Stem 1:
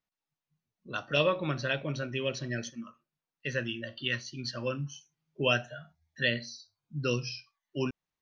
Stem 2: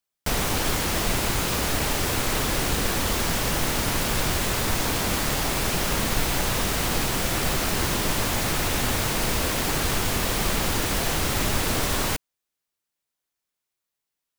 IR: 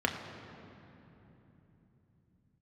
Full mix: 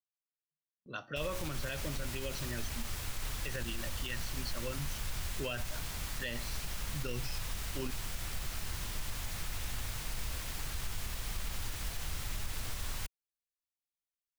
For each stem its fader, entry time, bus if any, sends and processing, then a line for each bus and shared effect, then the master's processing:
-5.5 dB, 0.00 s, no send, gate with hold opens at -51 dBFS
-15.0 dB, 0.90 s, no send, bass shelf 220 Hz +9 dB; peaking EQ 300 Hz -13 dB 2.9 oct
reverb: none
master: peak limiter -27 dBFS, peak gain reduction 9.5 dB

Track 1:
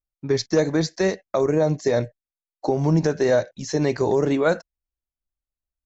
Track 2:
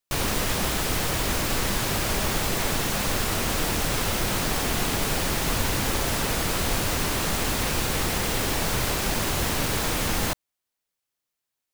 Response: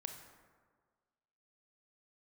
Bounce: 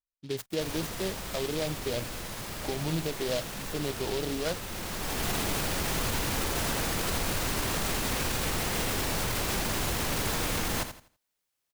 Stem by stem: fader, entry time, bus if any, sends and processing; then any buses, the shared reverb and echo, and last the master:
-12.5 dB, 0.00 s, no send, no echo send, delay time shaken by noise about 3.3 kHz, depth 0.11 ms
+1.5 dB, 0.50 s, no send, echo send -9.5 dB, peak limiter -22.5 dBFS, peak gain reduction 11.5 dB; auto duck -13 dB, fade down 1.05 s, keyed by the first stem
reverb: none
echo: feedback delay 83 ms, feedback 28%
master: none

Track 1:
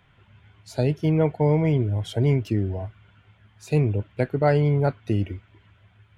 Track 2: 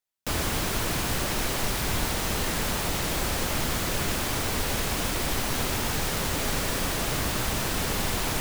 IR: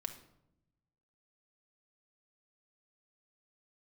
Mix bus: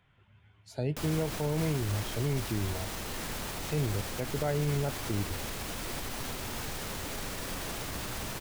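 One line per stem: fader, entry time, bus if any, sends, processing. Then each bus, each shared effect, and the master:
-8.0 dB, 0.00 s, no send, none
-2.5 dB, 0.70 s, no send, peak limiter -20.5 dBFS, peak gain reduction 5.5 dB; flange 0.36 Hz, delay 7.6 ms, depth 3.6 ms, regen -76%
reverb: none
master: peak limiter -21 dBFS, peak gain reduction 5 dB

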